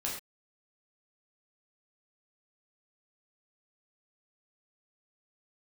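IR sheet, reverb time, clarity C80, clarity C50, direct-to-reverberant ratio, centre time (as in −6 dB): non-exponential decay, 7.5 dB, 4.0 dB, −4.0 dB, 37 ms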